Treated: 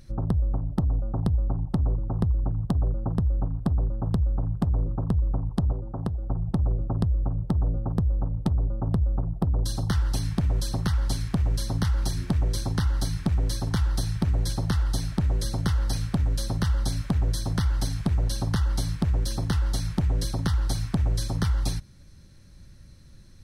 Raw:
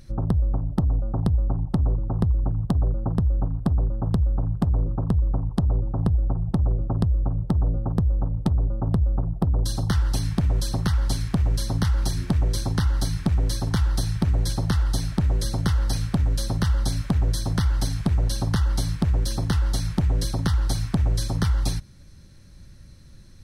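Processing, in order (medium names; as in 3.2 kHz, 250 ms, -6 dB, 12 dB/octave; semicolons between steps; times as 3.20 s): 5.72–6.30 s: bass shelf 160 Hz -8 dB; trim -2.5 dB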